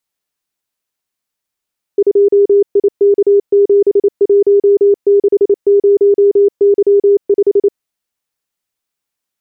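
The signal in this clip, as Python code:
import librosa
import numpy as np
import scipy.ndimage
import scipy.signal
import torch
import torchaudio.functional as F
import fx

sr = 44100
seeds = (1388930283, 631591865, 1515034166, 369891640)

y = fx.morse(sr, text='2IK7160Y5', wpm=28, hz=403.0, level_db=-5.0)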